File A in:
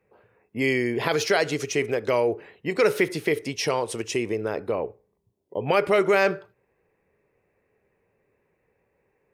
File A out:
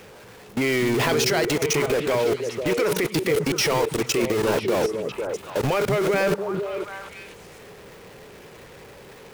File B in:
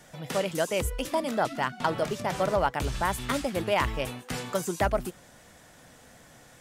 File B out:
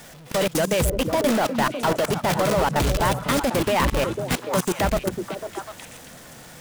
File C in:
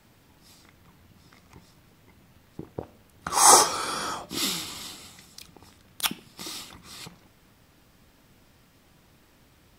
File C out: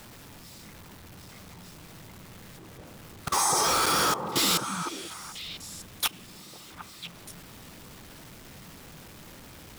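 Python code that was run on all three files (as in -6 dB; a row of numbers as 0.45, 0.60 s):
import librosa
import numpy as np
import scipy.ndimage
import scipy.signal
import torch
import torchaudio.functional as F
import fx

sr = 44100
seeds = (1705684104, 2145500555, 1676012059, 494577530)

y = x + 0.5 * 10.0 ** (-21.5 / 20.0) * np.sign(x)
y = fx.level_steps(y, sr, step_db=24)
y = fx.echo_stepped(y, sr, ms=249, hz=160.0, octaves=1.4, feedback_pct=70, wet_db=-1)
y = y * 10.0 ** (-9 / 20.0) / np.max(np.abs(y))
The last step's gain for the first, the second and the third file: +2.5, +3.5, 0.0 dB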